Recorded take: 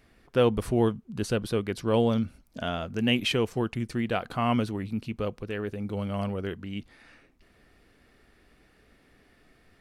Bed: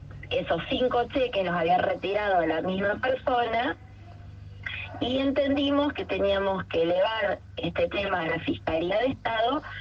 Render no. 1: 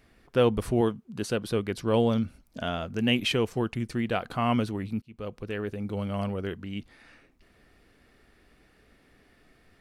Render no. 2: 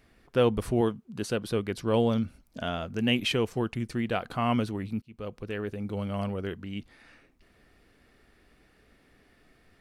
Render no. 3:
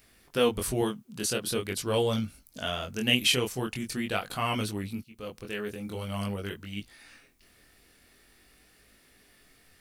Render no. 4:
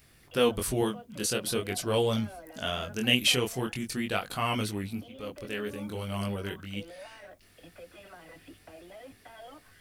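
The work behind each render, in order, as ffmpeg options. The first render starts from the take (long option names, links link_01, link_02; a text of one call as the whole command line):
ffmpeg -i in.wav -filter_complex "[0:a]asettb=1/sr,asplit=3[link_01][link_02][link_03];[link_01]atrim=end=0.814[link_04];[link_02]atrim=start=0.81:end=1.47,asetpts=PTS-STARTPTS,afade=type=in:duration=0.004:curve=qsin,afade=type=out:start_time=0.656:duration=0.004:curve=qsin,highpass=frequency=160:poles=1[link_05];[link_03]atrim=start=1.466[link_06];[link_04][link_05]acrossfade=duration=0.004:curve1=hsin:curve2=qsin[link_07];[link_07][link_06]acrossfade=duration=0.004:curve1=qsin:curve2=hsin,asplit=2[link_08][link_09];[link_08]atrim=end=5.02,asetpts=PTS-STARTPTS,afade=type=out:start_time=5.016:duration=0.004:curve=hsin[link_10];[link_09]atrim=start=5.02,asetpts=PTS-STARTPTS,afade=type=in:duration=0.45[link_11];[link_10][link_11]concat=n=2:v=0:a=1" out.wav
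ffmpeg -i in.wav -af "volume=-1dB" out.wav
ffmpeg -i in.wav -af "flanger=delay=19:depth=5:speed=0.45,crystalizer=i=5:c=0" out.wav
ffmpeg -i in.wav -i bed.wav -filter_complex "[1:a]volume=-23dB[link_01];[0:a][link_01]amix=inputs=2:normalize=0" out.wav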